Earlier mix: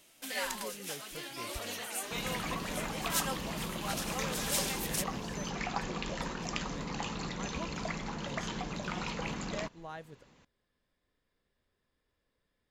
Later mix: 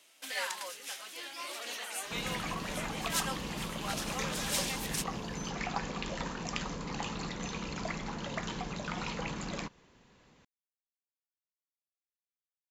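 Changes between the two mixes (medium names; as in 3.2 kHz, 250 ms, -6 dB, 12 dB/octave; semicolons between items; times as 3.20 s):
speech: muted; first sound: add frequency weighting A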